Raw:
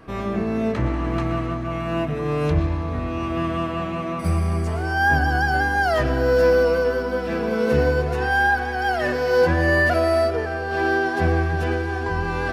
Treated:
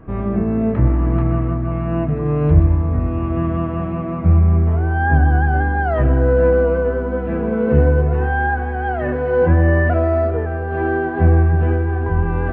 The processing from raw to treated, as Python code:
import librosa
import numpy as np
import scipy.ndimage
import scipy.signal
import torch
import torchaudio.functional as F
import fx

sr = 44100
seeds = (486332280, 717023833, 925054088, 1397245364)

y = scipy.ndimage.gaussian_filter1d(x, 4.0, mode='constant')
y = fx.low_shelf(y, sr, hz=230.0, db=11.0)